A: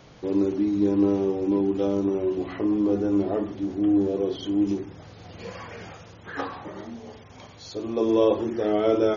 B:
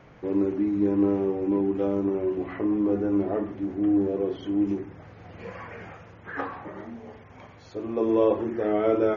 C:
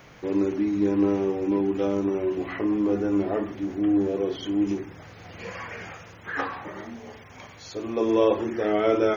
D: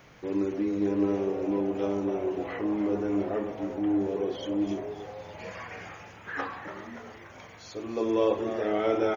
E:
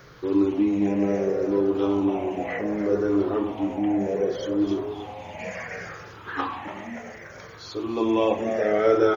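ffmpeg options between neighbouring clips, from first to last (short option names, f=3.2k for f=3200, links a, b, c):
-af "highshelf=f=2.9k:t=q:w=1.5:g=-10.5,volume=-1.5dB"
-af "crystalizer=i=6:c=0"
-filter_complex "[0:a]asplit=8[a][b][c][d][e][f][g][h];[b]adelay=287,afreqshift=110,volume=-11dB[i];[c]adelay=574,afreqshift=220,volume=-15.6dB[j];[d]adelay=861,afreqshift=330,volume=-20.2dB[k];[e]adelay=1148,afreqshift=440,volume=-24.7dB[l];[f]adelay=1435,afreqshift=550,volume=-29.3dB[m];[g]adelay=1722,afreqshift=660,volume=-33.9dB[n];[h]adelay=2009,afreqshift=770,volume=-38.5dB[o];[a][i][j][k][l][m][n][o]amix=inputs=8:normalize=0,volume=-4.5dB"
-af "afftfilt=real='re*pow(10,10/40*sin(2*PI*(0.58*log(max(b,1)*sr/1024/100)/log(2)-(-0.67)*(pts-256)/sr)))':imag='im*pow(10,10/40*sin(2*PI*(0.58*log(max(b,1)*sr/1024/100)/log(2)-(-0.67)*(pts-256)/sr)))':win_size=1024:overlap=0.75,volume=4dB"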